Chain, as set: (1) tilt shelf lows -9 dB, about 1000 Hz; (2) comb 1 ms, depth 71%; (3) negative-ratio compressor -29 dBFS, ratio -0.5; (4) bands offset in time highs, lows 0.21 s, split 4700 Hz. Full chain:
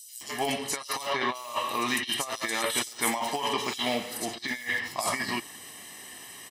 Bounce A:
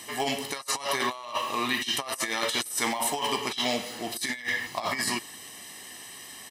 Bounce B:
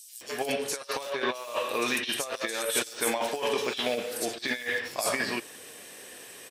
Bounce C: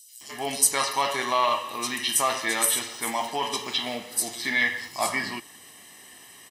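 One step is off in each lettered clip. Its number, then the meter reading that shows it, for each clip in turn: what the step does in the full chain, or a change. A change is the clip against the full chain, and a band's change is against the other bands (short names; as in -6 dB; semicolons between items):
4, echo-to-direct 28.0 dB to none; 2, 500 Hz band +5.5 dB; 3, crest factor change +2.5 dB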